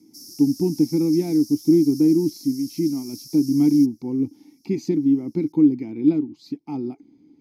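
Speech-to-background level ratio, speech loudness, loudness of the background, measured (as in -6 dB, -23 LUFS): 18.5 dB, -21.0 LUFS, -39.5 LUFS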